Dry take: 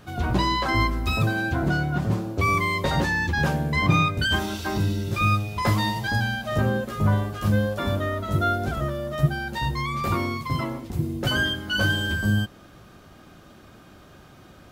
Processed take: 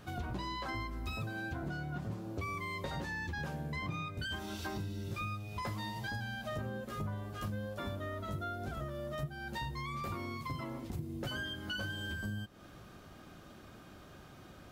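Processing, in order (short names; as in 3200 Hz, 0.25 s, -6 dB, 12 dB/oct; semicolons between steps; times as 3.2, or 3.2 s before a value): compressor, threshold -32 dBFS, peak gain reduction 17 dB; gain -5 dB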